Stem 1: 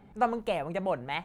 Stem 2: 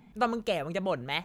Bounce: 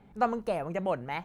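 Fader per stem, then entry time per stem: −2.5, −10.5 decibels; 0.00, 0.00 seconds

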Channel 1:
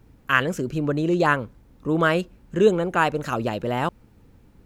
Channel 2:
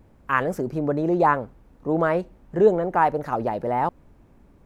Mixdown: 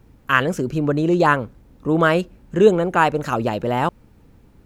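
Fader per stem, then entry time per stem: +2.0, −8.0 decibels; 0.00, 0.00 seconds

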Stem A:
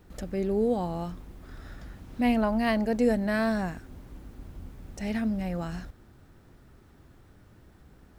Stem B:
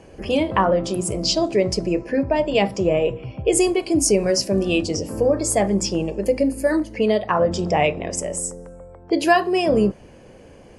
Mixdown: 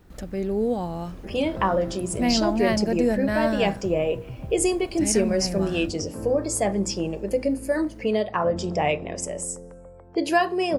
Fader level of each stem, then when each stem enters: +1.5, −4.5 decibels; 0.00, 1.05 seconds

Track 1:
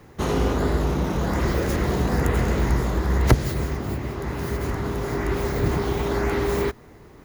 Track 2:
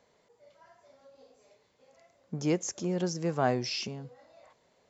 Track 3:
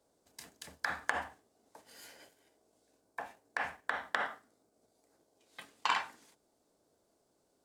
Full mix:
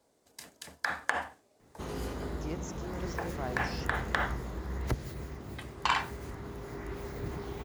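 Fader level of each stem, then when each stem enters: −15.5, −11.5, +3.0 decibels; 1.60, 0.00, 0.00 seconds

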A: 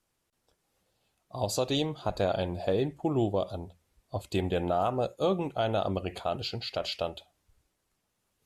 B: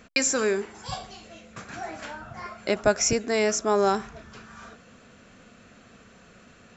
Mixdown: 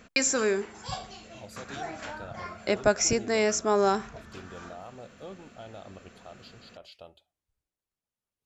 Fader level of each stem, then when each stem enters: −16.5, −1.5 decibels; 0.00, 0.00 seconds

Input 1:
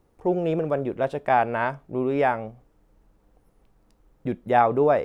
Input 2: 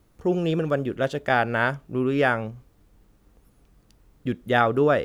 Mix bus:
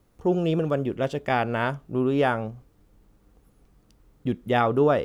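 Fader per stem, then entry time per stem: −5.5, −3.0 decibels; 0.00, 0.00 seconds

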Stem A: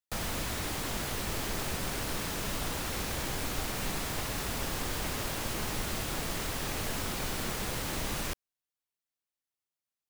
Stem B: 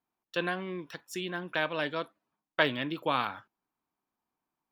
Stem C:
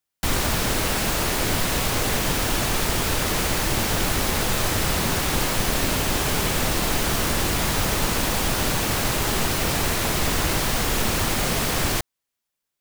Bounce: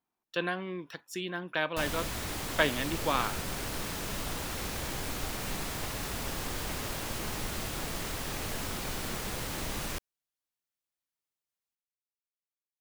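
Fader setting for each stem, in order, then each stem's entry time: −1.5 dB, −0.5 dB, muted; 1.65 s, 0.00 s, muted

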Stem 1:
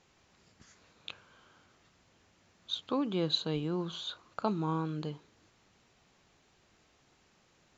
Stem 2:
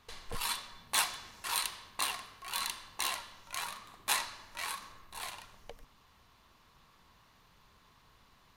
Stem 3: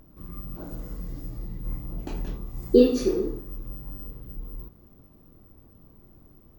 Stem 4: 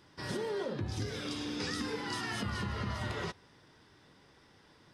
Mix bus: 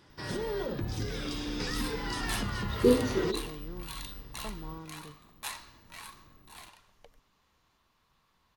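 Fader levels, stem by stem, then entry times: −11.5, −8.0, −6.5, +1.5 decibels; 0.00, 1.35, 0.10, 0.00 seconds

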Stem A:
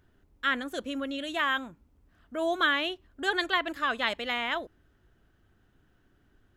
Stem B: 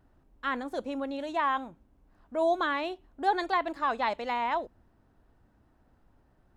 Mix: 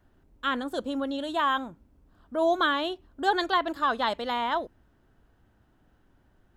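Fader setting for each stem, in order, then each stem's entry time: −2.5, −1.0 decibels; 0.00, 0.00 seconds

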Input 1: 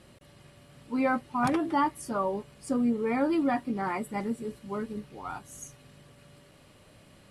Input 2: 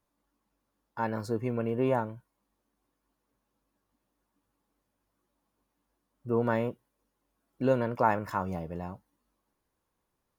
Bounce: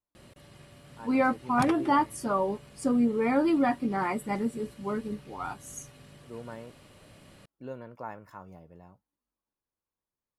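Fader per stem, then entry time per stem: +2.0, −14.5 decibels; 0.15, 0.00 seconds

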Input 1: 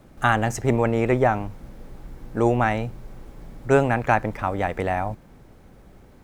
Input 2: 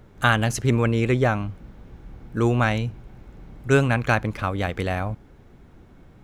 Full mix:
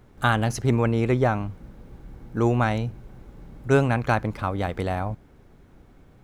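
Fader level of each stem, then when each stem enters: −9.5, −4.0 decibels; 0.00, 0.00 seconds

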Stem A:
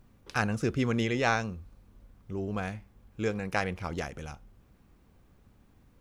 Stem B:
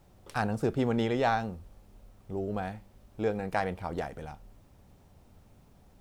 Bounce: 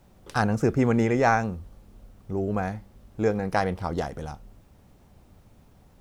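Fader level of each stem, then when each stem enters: −1.0, +2.0 decibels; 0.00, 0.00 seconds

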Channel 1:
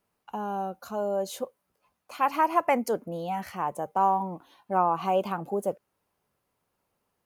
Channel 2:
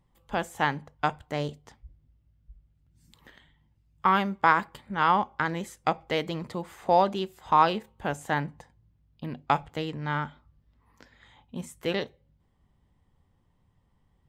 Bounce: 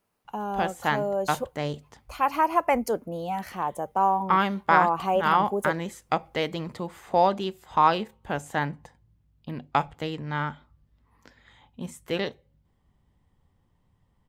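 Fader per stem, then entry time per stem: +1.0, +0.5 decibels; 0.00, 0.25 seconds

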